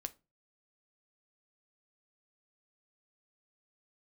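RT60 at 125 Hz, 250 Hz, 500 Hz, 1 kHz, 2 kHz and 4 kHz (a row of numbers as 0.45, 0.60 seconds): 0.50, 0.35, 0.30, 0.25, 0.20, 0.20 seconds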